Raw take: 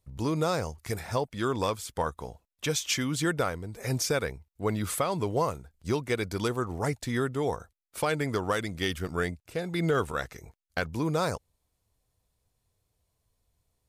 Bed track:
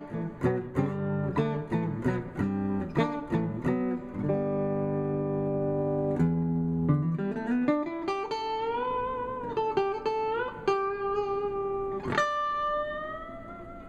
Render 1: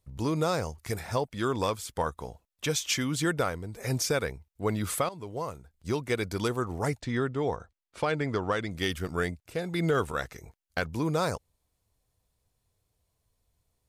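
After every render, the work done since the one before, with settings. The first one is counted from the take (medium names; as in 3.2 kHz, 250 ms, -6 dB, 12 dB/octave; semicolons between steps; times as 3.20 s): 5.09–6.13 s: fade in, from -15 dB; 7.00–8.71 s: distance through air 100 m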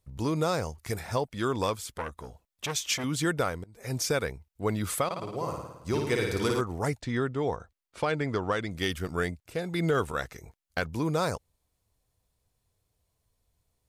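1.93–3.04 s: transformer saturation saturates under 1.3 kHz; 3.64–4.07 s: fade in, from -22.5 dB; 5.05–6.61 s: flutter echo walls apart 9.5 m, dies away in 0.95 s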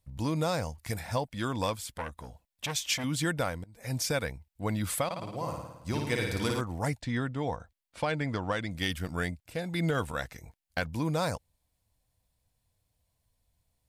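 graphic EQ with 31 bands 400 Hz -12 dB, 1.25 kHz -6 dB, 6.3 kHz -3 dB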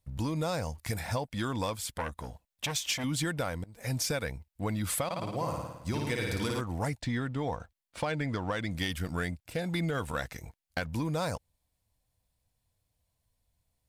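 compression, threshold -31 dBFS, peak gain reduction 7.5 dB; waveshaping leveller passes 1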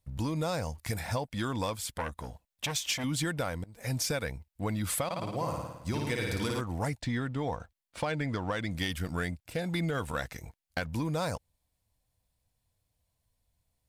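no audible change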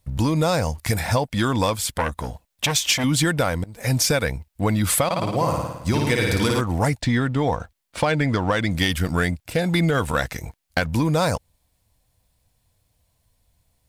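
trim +11.5 dB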